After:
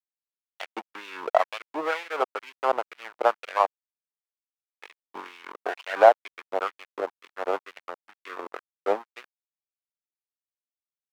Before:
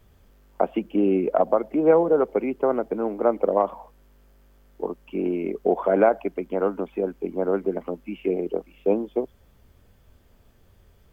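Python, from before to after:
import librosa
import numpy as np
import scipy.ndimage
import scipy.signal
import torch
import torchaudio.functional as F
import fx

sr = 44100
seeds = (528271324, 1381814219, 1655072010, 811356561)

y = fx.backlash(x, sr, play_db=-20.5)
y = fx.filter_lfo_highpass(y, sr, shape='sine', hz=2.1, low_hz=730.0, high_hz=2600.0, q=1.8)
y = y * librosa.db_to_amplitude(2.5)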